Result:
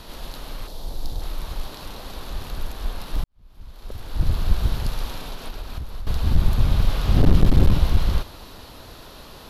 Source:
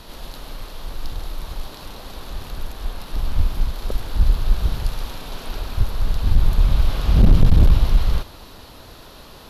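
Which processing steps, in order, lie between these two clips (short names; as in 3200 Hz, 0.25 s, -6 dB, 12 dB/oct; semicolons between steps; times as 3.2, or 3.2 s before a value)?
one-sided fold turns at -15.5 dBFS; 0.67–1.22 band shelf 1800 Hz -9 dB; 3.24–4.39 fade in quadratic; 5.2–6.07 compressor 12:1, threshold -27 dBFS, peak gain reduction 13.5 dB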